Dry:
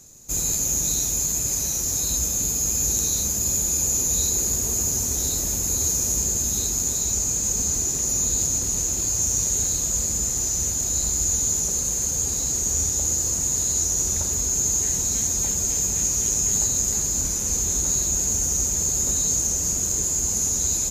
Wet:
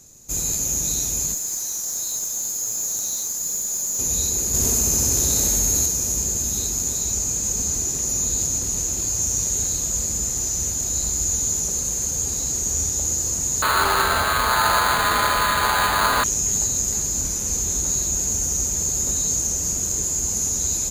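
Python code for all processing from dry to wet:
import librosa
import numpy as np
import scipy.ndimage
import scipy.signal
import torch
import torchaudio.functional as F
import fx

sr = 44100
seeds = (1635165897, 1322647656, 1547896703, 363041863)

y = fx.chain(x, sr, fx.highpass(hz=1500.0, slope=12),
    fx.tube_stage(drive_db=18.0, bias=0.3),
    fx.peak_eq(hz=2600.0, db=-7.5, octaves=0.64), at=(1.34, 3.99))
y = fx.chain(y, sr, fx.room_flutter(wall_m=10.8, rt60_s=1.4),
    fx.env_flatten(amount_pct=100), at=(4.54, 5.86))
y = fx.chain(y, sr, fx.high_shelf(hz=6900.0, db=8.5),
    fx.resample_bad(factor=8, down='none', up='hold'), at=(13.62, 16.24))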